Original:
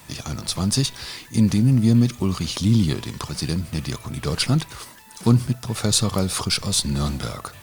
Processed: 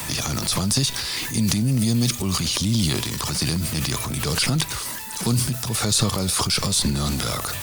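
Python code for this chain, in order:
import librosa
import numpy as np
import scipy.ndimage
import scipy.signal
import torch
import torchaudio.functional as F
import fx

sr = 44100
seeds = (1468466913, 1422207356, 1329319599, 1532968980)

y = fx.high_shelf(x, sr, hz=3200.0, db=10.0)
y = fx.transient(y, sr, attack_db=-5, sustain_db=8)
y = fx.band_squash(y, sr, depth_pct=70)
y = y * librosa.db_to_amplitude(-3.0)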